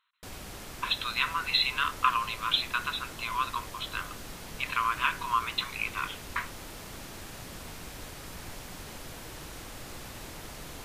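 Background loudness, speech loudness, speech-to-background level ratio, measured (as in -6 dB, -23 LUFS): -42.5 LUFS, -30.0 LUFS, 12.5 dB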